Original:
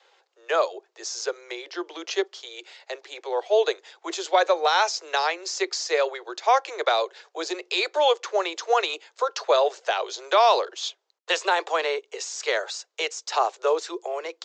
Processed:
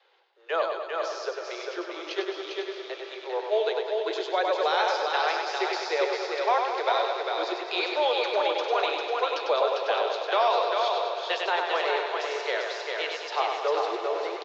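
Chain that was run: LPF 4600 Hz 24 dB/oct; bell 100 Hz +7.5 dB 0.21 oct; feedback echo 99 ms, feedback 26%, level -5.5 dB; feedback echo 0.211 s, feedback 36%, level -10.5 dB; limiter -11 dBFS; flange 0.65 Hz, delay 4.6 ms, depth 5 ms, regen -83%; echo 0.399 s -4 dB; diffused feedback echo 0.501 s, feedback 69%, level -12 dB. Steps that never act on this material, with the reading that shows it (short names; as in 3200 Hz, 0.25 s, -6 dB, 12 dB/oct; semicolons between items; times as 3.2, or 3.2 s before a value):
bell 100 Hz: input band starts at 290 Hz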